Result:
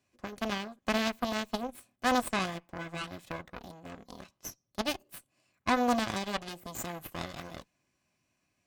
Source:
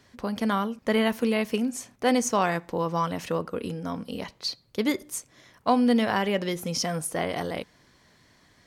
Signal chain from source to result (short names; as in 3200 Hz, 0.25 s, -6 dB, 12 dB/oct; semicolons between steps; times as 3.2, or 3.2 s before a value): added harmonics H 4 -7 dB, 7 -20 dB, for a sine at -9.5 dBFS; formant shift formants +5 st; notch comb 460 Hz; gain -7 dB